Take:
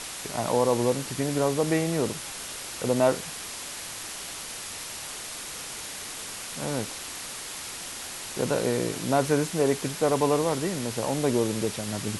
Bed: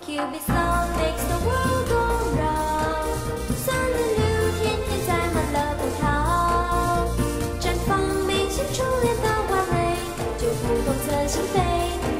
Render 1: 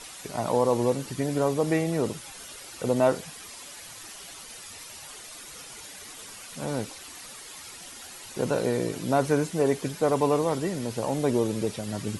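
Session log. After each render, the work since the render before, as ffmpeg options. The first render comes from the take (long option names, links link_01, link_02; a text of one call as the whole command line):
ffmpeg -i in.wav -af "afftdn=noise_reduction=10:noise_floor=-38" out.wav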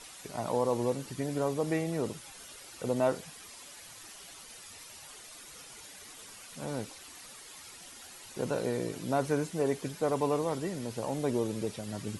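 ffmpeg -i in.wav -af "volume=-6dB" out.wav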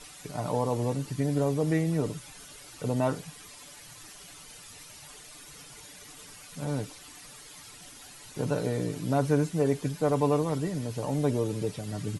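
ffmpeg -i in.wav -af "bass=frequency=250:gain=7,treble=frequency=4000:gain=0,aecho=1:1:6.8:0.45" out.wav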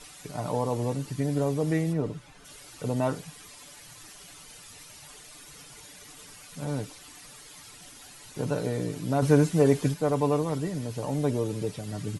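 ffmpeg -i in.wav -filter_complex "[0:a]asplit=3[link_01][link_02][link_03];[link_01]afade=type=out:start_time=1.92:duration=0.02[link_04];[link_02]lowpass=frequency=1900:poles=1,afade=type=in:start_time=1.92:duration=0.02,afade=type=out:start_time=2.44:duration=0.02[link_05];[link_03]afade=type=in:start_time=2.44:duration=0.02[link_06];[link_04][link_05][link_06]amix=inputs=3:normalize=0,asettb=1/sr,asplit=3[link_07][link_08][link_09];[link_07]atrim=end=9.224[link_10];[link_08]atrim=start=9.22:end=9.94,asetpts=PTS-STARTPTS,afade=type=in:duration=0.004:curve=qsin,afade=type=out:start_time=0.716:duration=0.004:curve=qsin,acontrast=28[link_11];[link_09]atrim=start=9.936[link_12];[link_10][link_11]acrossfade=duration=0.004:curve1=hsin:curve2=qsin[link_13];[link_13][link_12]acrossfade=duration=0.004:curve1=qsin:curve2=hsin" out.wav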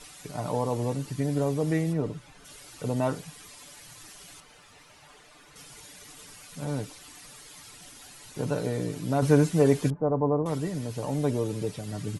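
ffmpeg -i in.wav -filter_complex "[0:a]asettb=1/sr,asplit=3[link_01][link_02][link_03];[link_01]atrim=end=4.404[link_04];[link_02]atrim=start=4.4:end=5.56,asetpts=PTS-STARTPTS,afade=type=in:duration=0.004:curve=qsin,afade=type=out:start_time=1.156:duration=0.004:curve=qsin,asplit=2[link_05][link_06];[link_06]highpass=frequency=720:poles=1,volume=9dB,asoftclip=type=tanh:threshold=-34.5dB[link_07];[link_05][link_07]amix=inputs=2:normalize=0,lowpass=frequency=1200:poles=1,volume=-6dB[link_08];[link_03]atrim=start=5.556[link_09];[link_04][link_08]acrossfade=duration=0.004:curve1=hsin:curve2=qsin[link_10];[link_10][link_09]acrossfade=duration=0.004:curve1=qsin:curve2=hsin,asettb=1/sr,asplit=3[link_11][link_12][link_13];[link_11]atrim=end=9.904[link_14];[link_12]atrim=start=9.9:end=10.46,asetpts=PTS-STARTPTS,afade=type=in:duration=0.004:curve=qsin,afade=type=out:start_time=0.556:duration=0.004:curve=qsin,lowpass=frequency=1100:width=0.5412,lowpass=frequency=1100:width=1.3066[link_15];[link_13]atrim=start=10.456[link_16];[link_14][link_15]acrossfade=duration=0.004:curve1=hsin:curve2=qsin[link_17];[link_17][link_16]acrossfade=duration=0.004:curve1=qsin:curve2=hsin" out.wav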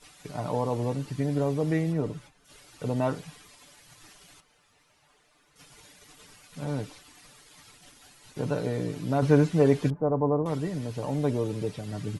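ffmpeg -i in.wav -filter_complex "[0:a]agate=range=-11dB:threshold=-47dB:ratio=16:detection=peak,acrossover=split=5100[link_01][link_02];[link_02]acompressor=threshold=-55dB:ratio=4:attack=1:release=60[link_03];[link_01][link_03]amix=inputs=2:normalize=0" out.wav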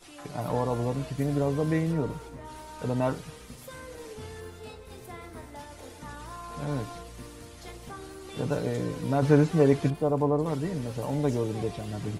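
ffmpeg -i in.wav -i bed.wav -filter_complex "[1:a]volume=-20.5dB[link_01];[0:a][link_01]amix=inputs=2:normalize=0" out.wav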